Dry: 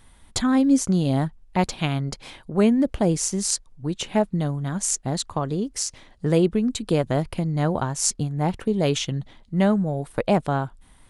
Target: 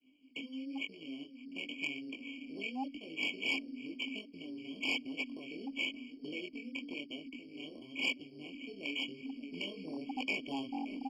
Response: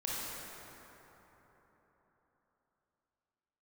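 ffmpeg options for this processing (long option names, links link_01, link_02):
-filter_complex "[0:a]asplit=2[link_01][link_02];[link_02]aecho=0:1:578|1156|1734|2312:0.0841|0.0438|0.0228|0.0118[link_03];[link_01][link_03]amix=inputs=2:normalize=0,asubboost=boost=11.5:cutoff=52,tremolo=f=260:d=0.75,acrossover=split=1800[link_04][link_05];[link_04]acompressor=threshold=-31dB:ratio=12[link_06];[link_06][link_05]amix=inputs=2:normalize=0,agate=range=-33dB:threshold=-53dB:ratio=3:detection=peak,dynaudnorm=framelen=300:gausssize=11:maxgain=16dB,acrusher=samples=9:mix=1:aa=0.000001,flanger=delay=19:depth=6.7:speed=0.97,asplit=3[link_07][link_08][link_09];[link_07]bandpass=frequency=270:width_type=q:width=8,volume=0dB[link_10];[link_08]bandpass=frequency=2290:width_type=q:width=8,volume=-6dB[link_11];[link_09]bandpass=frequency=3010:width_type=q:width=8,volume=-9dB[link_12];[link_10][link_11][link_12]amix=inputs=3:normalize=0,volume=34.5dB,asoftclip=hard,volume=-34.5dB,acrossover=split=400 7700:gain=0.126 1 0.251[link_13][link_14][link_15];[link_13][link_14][link_15]amix=inputs=3:normalize=0,afftfilt=real='re*eq(mod(floor(b*sr/1024/1100),2),0)':imag='im*eq(mod(floor(b*sr/1024/1100),2),0)':win_size=1024:overlap=0.75,volume=9.5dB"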